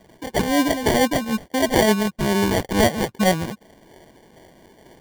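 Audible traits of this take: phasing stages 2, 2.2 Hz, lowest notch 390–2600 Hz; aliases and images of a low sample rate 1300 Hz, jitter 0%

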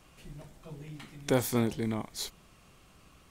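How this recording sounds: noise floor -59 dBFS; spectral tilt -5.0 dB/oct

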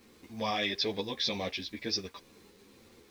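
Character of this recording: tremolo saw up 2 Hz, depth 40%; a quantiser's noise floor 10-bit, dither none; a shimmering, thickened sound

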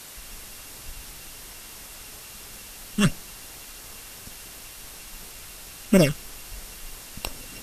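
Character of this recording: a buzz of ramps at a fixed pitch in blocks of 16 samples; phasing stages 8, 2.9 Hz, lowest notch 640–4500 Hz; a quantiser's noise floor 8-bit, dither triangular; Vorbis

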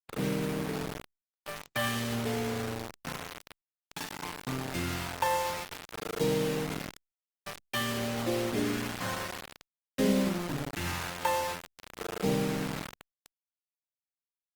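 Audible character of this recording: phasing stages 2, 0.51 Hz, lowest notch 260–1500 Hz; a quantiser's noise floor 6-bit, dither none; Opus

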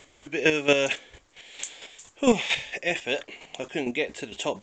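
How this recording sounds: chopped level 4.4 Hz, depth 60%, duty 20%; A-law

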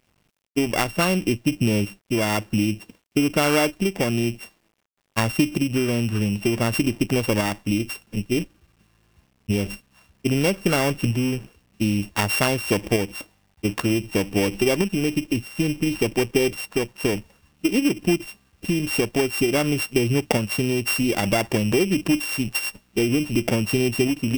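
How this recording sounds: a buzz of ramps at a fixed pitch in blocks of 16 samples; tremolo saw up 0.54 Hz, depth 30%; a quantiser's noise floor 10-bit, dither none

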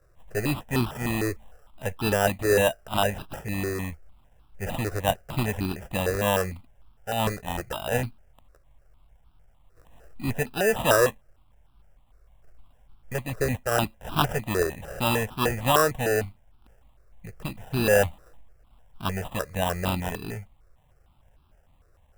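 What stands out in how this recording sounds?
aliases and images of a low sample rate 2200 Hz, jitter 0%; notches that jump at a steady rate 6.6 Hz 870–1900 Hz

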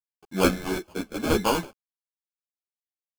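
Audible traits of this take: a quantiser's noise floor 10-bit, dither none; chopped level 0.77 Hz, depth 60%, duty 60%; aliases and images of a low sample rate 1900 Hz, jitter 0%; a shimmering, thickened sound

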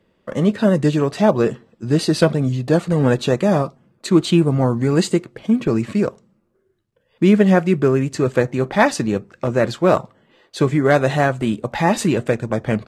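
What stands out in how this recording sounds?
noise floor -65 dBFS; spectral tilt -6.5 dB/oct

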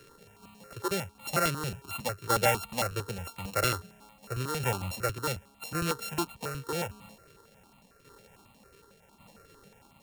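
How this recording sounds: a buzz of ramps at a fixed pitch in blocks of 32 samples; tremolo saw down 0.87 Hz, depth 55%; a quantiser's noise floor 12-bit, dither none; notches that jump at a steady rate 11 Hz 210–1600 Hz

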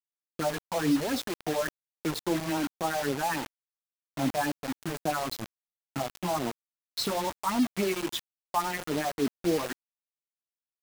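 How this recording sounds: phasing stages 4, 3.6 Hz, lowest notch 260–2200 Hz; a quantiser's noise floor 6-bit, dither none

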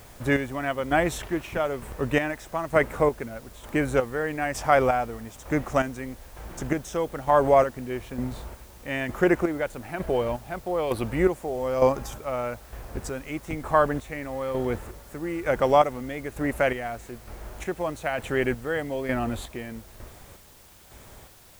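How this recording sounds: chopped level 1.1 Hz, depth 60%, duty 40%; a quantiser's noise floor 10-bit, dither triangular

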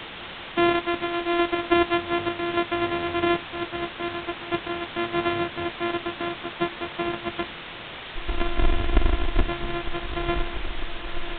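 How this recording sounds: a buzz of ramps at a fixed pitch in blocks of 128 samples; random-step tremolo, depth 70%; a quantiser's noise floor 6-bit, dither triangular; A-law

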